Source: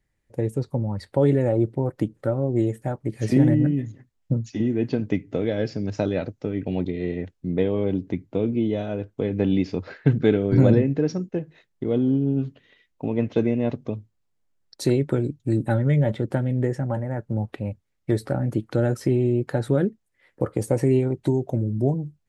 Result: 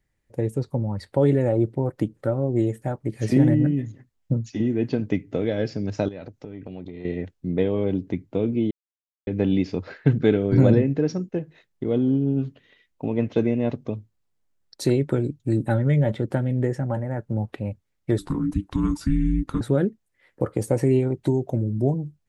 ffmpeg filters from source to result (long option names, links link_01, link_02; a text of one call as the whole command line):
ffmpeg -i in.wav -filter_complex "[0:a]asettb=1/sr,asplit=3[link_01][link_02][link_03];[link_01]atrim=end=6.084[link_04];[link_02]atrim=start=6.08:end=7.05,asetpts=PTS-STARTPTS,afade=type=in:duration=0.004:curve=qsin,afade=type=out:start_time=0.966:duration=0.004:curve=qsin,acompressor=threshold=-33dB:ratio=5:attack=3.2:release=140:knee=1:detection=peak[link_05];[link_03]atrim=start=7.046[link_06];[link_04][link_05]acrossfade=duration=0.004:curve1=hsin:curve2=qsin[link_07];[link_07][link_06]acrossfade=duration=0.004:curve1=qsin:curve2=hsin,asettb=1/sr,asplit=3[link_08][link_09][link_10];[link_08]atrim=end=18.184[link_11];[link_09]atrim=start=18.18:end=19.61,asetpts=PTS-STARTPTS,afade=type=in:duration=0.004:curve=qsin,afade=type=out:start_time=1.426:duration=0.004:curve=qsin,afreqshift=-410[link_12];[link_10]atrim=start=19.606[link_13];[link_11][link_12]acrossfade=duration=0.004:curve1=hsin:curve2=qsin[link_14];[link_14][link_13]acrossfade=duration=0.004:curve1=qsin:curve2=hsin,asplit=3[link_15][link_16][link_17];[link_15]atrim=end=8.71,asetpts=PTS-STARTPTS,afade=type=out:start_time=8.706:duration=0.004:curve=hsin[link_18];[link_16]atrim=start=8.71:end=9.27,asetpts=PTS-STARTPTS,volume=0[link_19];[link_17]atrim=start=9.27,asetpts=PTS-STARTPTS,afade=type=in:duration=0.004:curve=hsin[link_20];[link_18][link_19][link_20]concat=n=3:v=0:a=1" out.wav